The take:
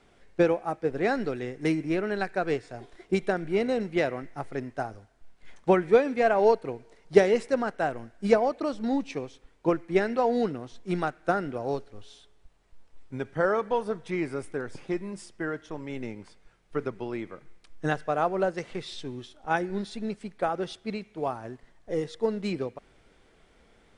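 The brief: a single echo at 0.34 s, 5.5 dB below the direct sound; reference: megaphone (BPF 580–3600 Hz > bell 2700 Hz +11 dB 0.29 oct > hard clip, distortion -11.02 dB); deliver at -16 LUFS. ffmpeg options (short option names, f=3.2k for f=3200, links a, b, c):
-af "highpass=580,lowpass=3.6k,equalizer=f=2.7k:t=o:w=0.29:g=11,aecho=1:1:340:0.531,asoftclip=type=hard:threshold=-23.5dB,volume=17dB"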